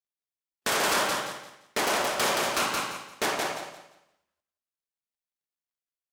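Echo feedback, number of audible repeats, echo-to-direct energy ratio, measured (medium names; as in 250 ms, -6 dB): 26%, 3, -3.0 dB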